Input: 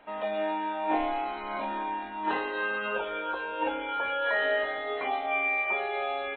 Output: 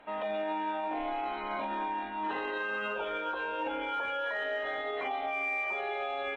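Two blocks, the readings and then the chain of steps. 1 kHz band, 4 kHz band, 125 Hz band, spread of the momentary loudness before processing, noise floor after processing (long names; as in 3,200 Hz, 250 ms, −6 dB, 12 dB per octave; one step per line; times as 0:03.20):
−3.0 dB, −3.5 dB, can't be measured, 7 LU, −37 dBFS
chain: brickwall limiter −26 dBFS, peak gain reduction 10.5 dB
harmonic generator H 4 −41 dB, 5 −41 dB, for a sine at −26 dBFS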